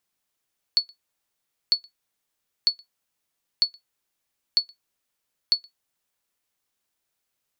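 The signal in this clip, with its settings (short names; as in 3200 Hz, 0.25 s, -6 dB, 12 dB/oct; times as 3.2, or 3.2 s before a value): sonar ping 4420 Hz, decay 0.12 s, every 0.95 s, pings 6, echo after 0.12 s, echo -29 dB -10 dBFS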